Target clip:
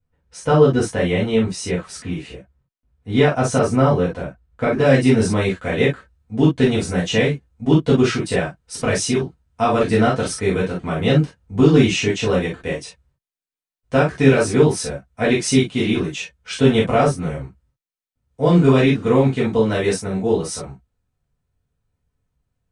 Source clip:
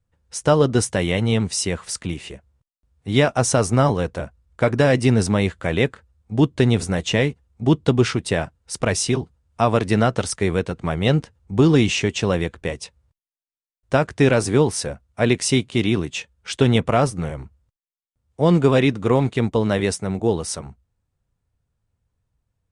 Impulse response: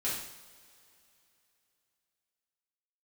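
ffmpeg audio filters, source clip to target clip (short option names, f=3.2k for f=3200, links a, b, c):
-filter_complex "[0:a]asetnsamples=n=441:p=0,asendcmd='4.85 highshelf g -2.5',highshelf=f=4.1k:g=-11[a];[1:a]atrim=start_sample=2205,atrim=end_sample=3087[b];[a][b]afir=irnorm=-1:irlink=0,volume=-2dB"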